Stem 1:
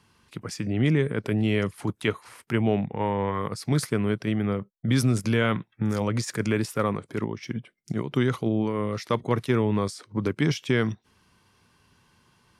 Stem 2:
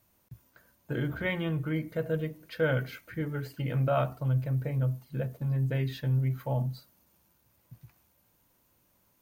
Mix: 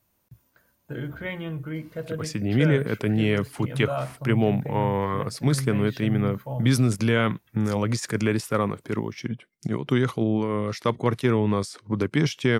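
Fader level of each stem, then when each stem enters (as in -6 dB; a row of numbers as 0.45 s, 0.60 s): +1.5 dB, -1.5 dB; 1.75 s, 0.00 s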